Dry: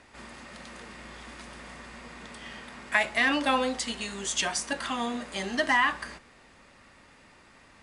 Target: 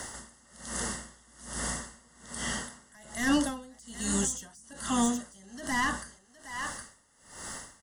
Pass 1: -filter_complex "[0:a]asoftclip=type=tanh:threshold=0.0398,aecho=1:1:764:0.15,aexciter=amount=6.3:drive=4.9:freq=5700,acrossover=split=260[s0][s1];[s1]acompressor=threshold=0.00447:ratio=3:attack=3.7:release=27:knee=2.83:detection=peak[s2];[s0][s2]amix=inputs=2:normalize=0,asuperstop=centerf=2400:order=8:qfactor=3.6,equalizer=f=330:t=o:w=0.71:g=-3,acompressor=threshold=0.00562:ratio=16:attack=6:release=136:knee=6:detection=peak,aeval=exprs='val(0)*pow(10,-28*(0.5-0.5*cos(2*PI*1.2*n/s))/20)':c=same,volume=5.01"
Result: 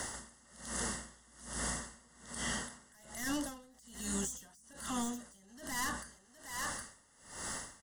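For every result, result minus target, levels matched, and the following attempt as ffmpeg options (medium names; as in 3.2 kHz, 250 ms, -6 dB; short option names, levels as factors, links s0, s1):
compression: peak gain reduction +10.5 dB; saturation: distortion +9 dB
-filter_complex "[0:a]asoftclip=type=tanh:threshold=0.0398,aecho=1:1:764:0.15,aexciter=amount=6.3:drive=4.9:freq=5700,acrossover=split=260[s0][s1];[s1]acompressor=threshold=0.00447:ratio=3:attack=3.7:release=27:knee=2.83:detection=peak[s2];[s0][s2]amix=inputs=2:normalize=0,asuperstop=centerf=2400:order=8:qfactor=3.6,equalizer=f=330:t=o:w=0.71:g=-3,aeval=exprs='val(0)*pow(10,-28*(0.5-0.5*cos(2*PI*1.2*n/s))/20)':c=same,volume=5.01"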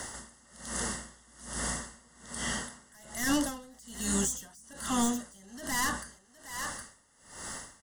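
saturation: distortion +9 dB
-filter_complex "[0:a]asoftclip=type=tanh:threshold=0.112,aecho=1:1:764:0.15,aexciter=amount=6.3:drive=4.9:freq=5700,acrossover=split=260[s0][s1];[s1]acompressor=threshold=0.00447:ratio=3:attack=3.7:release=27:knee=2.83:detection=peak[s2];[s0][s2]amix=inputs=2:normalize=0,asuperstop=centerf=2400:order=8:qfactor=3.6,equalizer=f=330:t=o:w=0.71:g=-3,aeval=exprs='val(0)*pow(10,-28*(0.5-0.5*cos(2*PI*1.2*n/s))/20)':c=same,volume=5.01"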